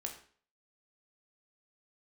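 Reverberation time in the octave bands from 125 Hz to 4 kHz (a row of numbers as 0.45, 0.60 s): 0.45, 0.50, 0.50, 0.45, 0.45, 0.45 s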